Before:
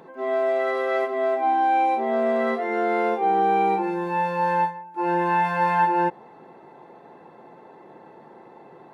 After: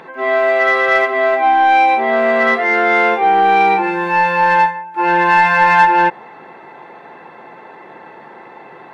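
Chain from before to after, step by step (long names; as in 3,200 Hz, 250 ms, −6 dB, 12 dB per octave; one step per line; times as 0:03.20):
parametric band 2,100 Hz +14 dB 2.2 octaves
in parallel at −3 dB: soft clipping −13 dBFS, distortion −14 dB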